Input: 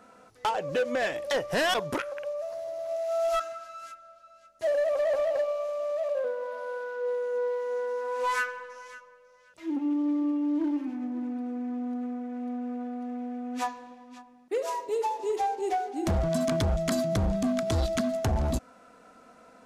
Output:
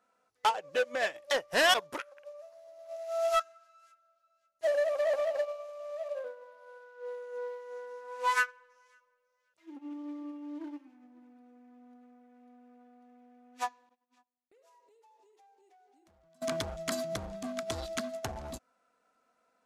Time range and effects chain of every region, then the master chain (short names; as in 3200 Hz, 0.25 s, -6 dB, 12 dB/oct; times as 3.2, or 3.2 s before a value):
13.89–16.42 gate -48 dBFS, range -18 dB + compressor 16:1, threshold -41 dBFS
whole clip: low shelf 370 Hz -11.5 dB; upward expander 2.5:1, over -40 dBFS; gain +4.5 dB